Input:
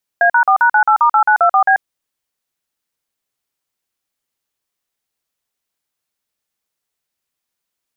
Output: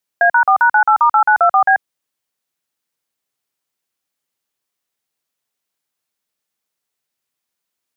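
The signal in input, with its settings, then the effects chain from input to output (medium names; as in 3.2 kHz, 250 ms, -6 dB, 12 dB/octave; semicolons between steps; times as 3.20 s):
DTMF "A#4#98*8924B", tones 88 ms, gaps 45 ms, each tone -10.5 dBFS
high-pass 97 Hz 12 dB/octave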